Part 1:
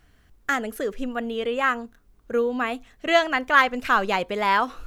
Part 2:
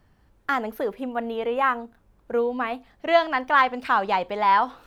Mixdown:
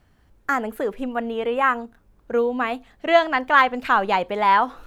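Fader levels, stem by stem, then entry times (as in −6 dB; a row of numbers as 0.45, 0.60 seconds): −6.5, −0.5 decibels; 0.00, 0.00 seconds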